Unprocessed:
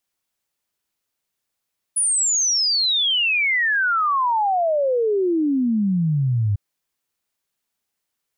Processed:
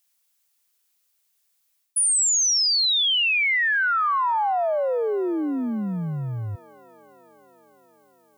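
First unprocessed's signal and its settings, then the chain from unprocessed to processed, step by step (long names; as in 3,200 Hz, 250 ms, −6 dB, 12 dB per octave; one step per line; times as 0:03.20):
exponential sine sweep 10,000 Hz → 98 Hz 4.60 s −16.5 dBFS
spectral tilt +3 dB per octave
reversed playback
downward compressor 6 to 1, threshold −20 dBFS
reversed playback
delay with a band-pass on its return 324 ms, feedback 76%, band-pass 760 Hz, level −20 dB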